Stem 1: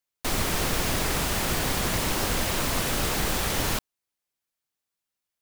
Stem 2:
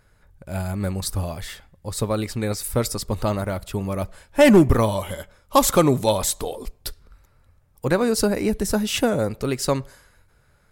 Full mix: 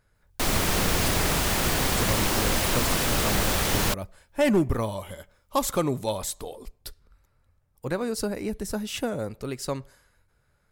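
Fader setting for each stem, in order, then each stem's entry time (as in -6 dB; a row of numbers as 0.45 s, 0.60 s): +2.0 dB, -8.5 dB; 0.15 s, 0.00 s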